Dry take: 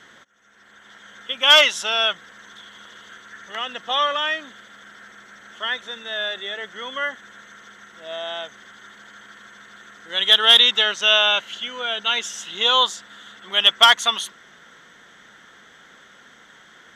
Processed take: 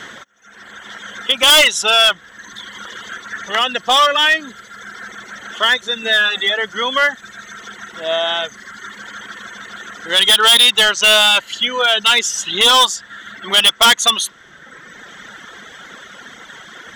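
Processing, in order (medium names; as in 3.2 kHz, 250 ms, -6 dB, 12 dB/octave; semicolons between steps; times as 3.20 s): 6.02–6.50 s: comb 4.1 ms, depth 71%; reverb removal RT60 1.3 s; in parallel at +1 dB: compression 4:1, threshold -30 dBFS, peak gain reduction 18 dB; on the sum: hard clipper -15.5 dBFS, distortion -6 dB; trim +8.5 dB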